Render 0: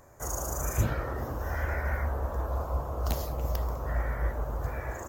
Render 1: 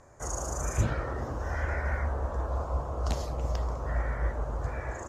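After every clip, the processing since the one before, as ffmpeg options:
ffmpeg -i in.wav -af "lowpass=frequency=8900:width=0.5412,lowpass=frequency=8900:width=1.3066" out.wav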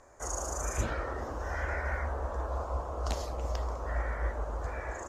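ffmpeg -i in.wav -af "equalizer=frequency=130:width_type=o:width=1.4:gain=-12" out.wav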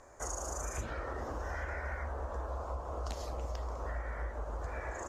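ffmpeg -i in.wav -af "acompressor=threshold=-36dB:ratio=6,volume=1dB" out.wav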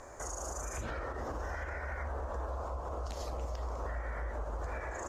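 ffmpeg -i in.wav -af "alimiter=level_in=13dB:limit=-24dB:level=0:latency=1:release=162,volume=-13dB,volume=7dB" out.wav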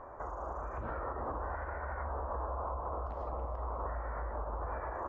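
ffmpeg -i in.wav -af "lowpass=frequency=1100:width_type=q:width=2.1,volume=-1.5dB" out.wav

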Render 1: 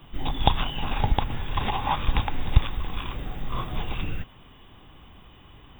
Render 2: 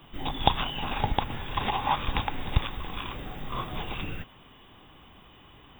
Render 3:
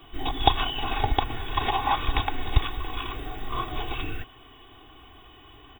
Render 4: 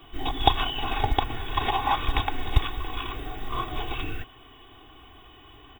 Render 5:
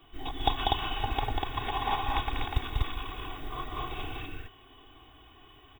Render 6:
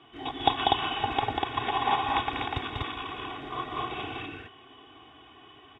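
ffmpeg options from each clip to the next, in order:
ffmpeg -i in.wav -af "lowshelf=frequency=120:gain=-9" out.wav
ffmpeg -i in.wav -af "aecho=1:1:2.7:0.86" out.wav
ffmpeg -i in.wav -af "acrusher=bits=9:mode=log:mix=0:aa=0.000001" out.wav
ffmpeg -i in.wav -af "aecho=1:1:192.4|244.9:0.631|0.794,volume=-8dB" out.wav
ffmpeg -i in.wav -af "highpass=140,lowpass=4300,volume=4.5dB" out.wav

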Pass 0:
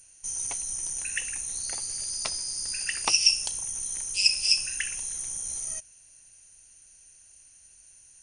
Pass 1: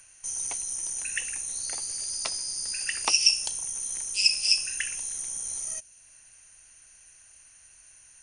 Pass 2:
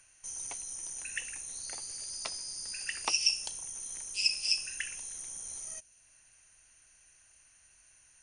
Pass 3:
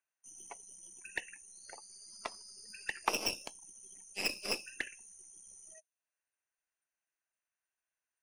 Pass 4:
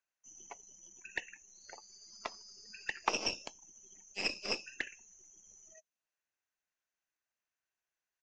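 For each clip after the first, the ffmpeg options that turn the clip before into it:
ffmpeg -i in.wav -filter_complex "[0:a]acrossover=split=210|880|2400[link_01][link_02][link_03][link_04];[link_01]alimiter=level_in=26.5dB:limit=-24dB:level=0:latency=1:release=300,volume=-26.5dB[link_05];[link_03]acompressor=mode=upward:threshold=-57dB:ratio=2.5[link_06];[link_05][link_02][link_06][link_04]amix=inputs=4:normalize=0" out.wav
ffmpeg -i in.wav -af "highshelf=frequency=8500:gain=-7.5,volume=-5dB" out.wav
ffmpeg -i in.wav -filter_complex "[0:a]aeval=exprs='0.237*(cos(1*acos(clip(val(0)/0.237,-1,1)))-cos(1*PI/2))+0.075*(cos(4*acos(clip(val(0)/0.237,-1,1)))-cos(4*PI/2))+0.0668*(cos(5*acos(clip(val(0)/0.237,-1,1)))-cos(5*PI/2))+0.106*(cos(6*acos(clip(val(0)/0.237,-1,1)))-cos(6*PI/2))+0.0473*(cos(7*acos(clip(val(0)/0.237,-1,1)))-cos(7*PI/2))':channel_layout=same,afftdn=noise_reduction=24:noise_floor=-45,acrossover=split=290 2200:gain=0.0891 1 0.2[link_01][link_02][link_03];[link_01][link_02][link_03]amix=inputs=3:normalize=0,volume=1.5dB" out.wav
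ffmpeg -i in.wav -af "aresample=16000,aresample=44100" out.wav

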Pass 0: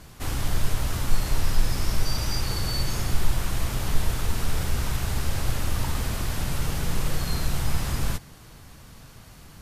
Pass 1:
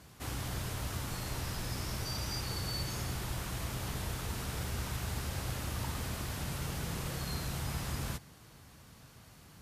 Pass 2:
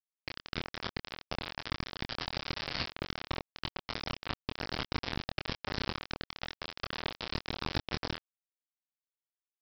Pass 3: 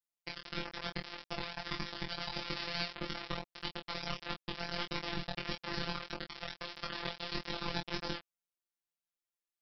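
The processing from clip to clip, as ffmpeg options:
ffmpeg -i in.wav -af "highpass=64,volume=-7.5dB" out.wav
ffmpeg -i in.wav -filter_complex "[0:a]aresample=11025,acrusher=bits=4:mix=0:aa=0.000001,aresample=44100,asplit=2[link_01][link_02];[link_02]adelay=25,volume=-5.5dB[link_03];[link_01][link_03]amix=inputs=2:normalize=0,volume=2dB" out.wav
ffmpeg -i in.wav -af "afftfilt=real='hypot(re,im)*cos(PI*b)':imag='0':win_size=1024:overlap=0.75,flanger=delay=19.5:depth=2.5:speed=1.6,volume=5dB" out.wav

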